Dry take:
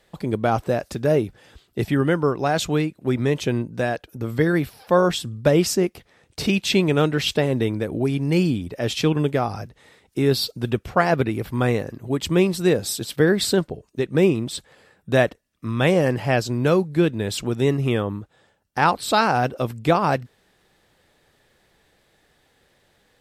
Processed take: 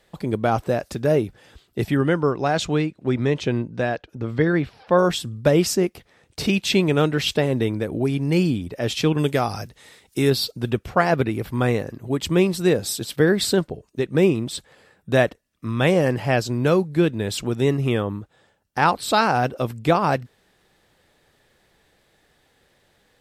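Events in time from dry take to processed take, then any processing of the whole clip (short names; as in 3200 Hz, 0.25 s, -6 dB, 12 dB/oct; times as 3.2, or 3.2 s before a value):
1.96–4.97 LPF 8700 Hz -> 3600 Hz
9.18–10.3 high shelf 2800 Hz +10.5 dB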